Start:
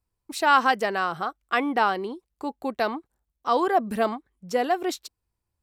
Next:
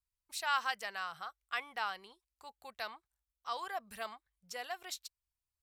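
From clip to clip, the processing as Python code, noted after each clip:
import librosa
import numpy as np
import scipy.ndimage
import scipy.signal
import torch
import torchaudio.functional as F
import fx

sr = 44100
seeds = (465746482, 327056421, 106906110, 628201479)

y = fx.tone_stack(x, sr, knobs='10-0-10')
y = y * 10.0 ** (-6.0 / 20.0)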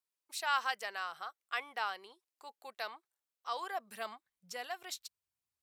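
y = fx.filter_sweep_highpass(x, sr, from_hz=340.0, to_hz=130.0, start_s=3.7, end_s=4.7, q=1.3)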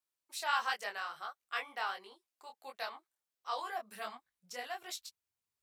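y = fx.detune_double(x, sr, cents=49)
y = y * 10.0 ** (3.5 / 20.0)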